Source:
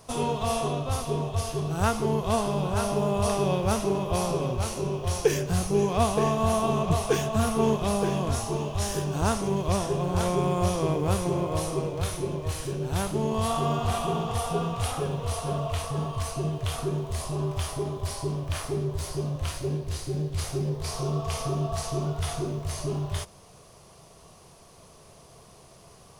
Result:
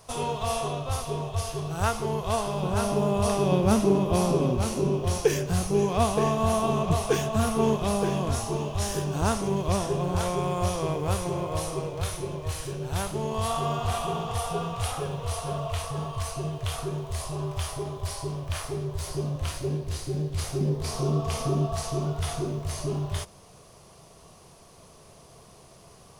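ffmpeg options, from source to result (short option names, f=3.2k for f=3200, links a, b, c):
-af "asetnsamples=n=441:p=0,asendcmd='2.63 equalizer g 2.5;3.52 equalizer g 9.5;5.18 equalizer g 0;10.16 equalizer g -7;19.07 equalizer g 0.5;20.61 equalizer g 7.5;21.65 equalizer g 1',equalizer=f=250:t=o:w=1.2:g=-7.5"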